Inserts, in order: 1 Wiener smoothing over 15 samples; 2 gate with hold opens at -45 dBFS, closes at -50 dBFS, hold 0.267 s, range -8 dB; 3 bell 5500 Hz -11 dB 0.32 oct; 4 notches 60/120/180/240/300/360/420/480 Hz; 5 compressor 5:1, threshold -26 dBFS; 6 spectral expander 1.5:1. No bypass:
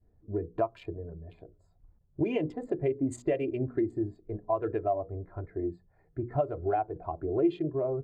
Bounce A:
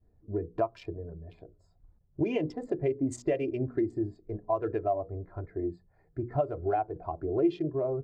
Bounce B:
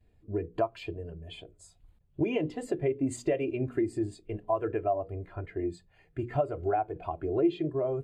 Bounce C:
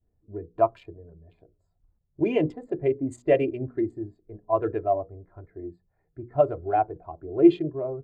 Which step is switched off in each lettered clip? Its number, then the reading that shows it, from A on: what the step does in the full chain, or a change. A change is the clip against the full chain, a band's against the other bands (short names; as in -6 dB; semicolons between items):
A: 3, 8 kHz band +2.5 dB; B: 1, 8 kHz band +5.5 dB; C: 5, mean gain reduction 3.5 dB